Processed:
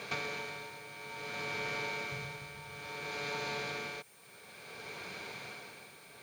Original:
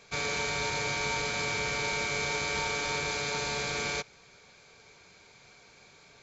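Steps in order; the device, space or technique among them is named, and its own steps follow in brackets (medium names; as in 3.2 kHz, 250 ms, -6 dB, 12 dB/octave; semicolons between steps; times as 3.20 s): medium wave at night (band-pass 130–4000 Hz; compression 8:1, threshold -49 dBFS, peak gain reduction 19 dB; tremolo 0.58 Hz, depth 74%; whistle 9 kHz -78 dBFS; white noise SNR 22 dB); 2.12–2.87 s: resonant low shelf 180 Hz +10 dB, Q 1.5; trim +13.5 dB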